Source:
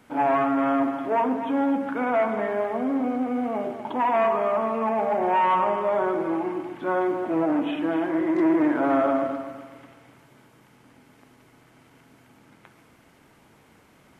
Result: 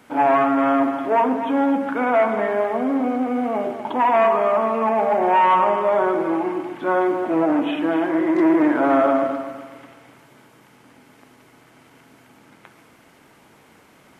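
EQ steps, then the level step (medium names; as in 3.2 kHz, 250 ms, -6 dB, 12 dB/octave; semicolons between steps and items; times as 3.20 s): bass shelf 140 Hz -8.5 dB; +5.5 dB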